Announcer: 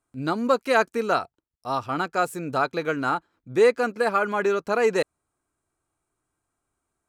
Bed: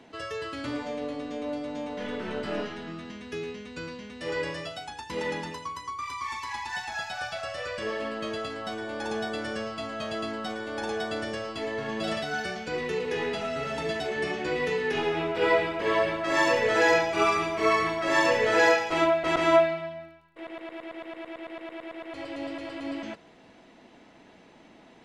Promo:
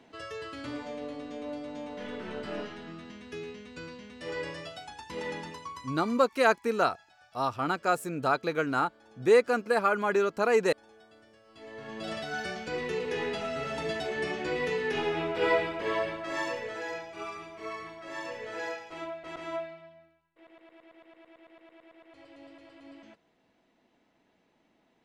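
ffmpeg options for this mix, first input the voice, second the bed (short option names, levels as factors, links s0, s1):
-filter_complex "[0:a]adelay=5700,volume=0.708[s0];[1:a]volume=8.41,afade=t=out:st=5.98:d=0.3:silence=0.0891251,afade=t=in:st=11.45:d=1.06:silence=0.0668344,afade=t=out:st=15.5:d=1.31:silence=0.211349[s1];[s0][s1]amix=inputs=2:normalize=0"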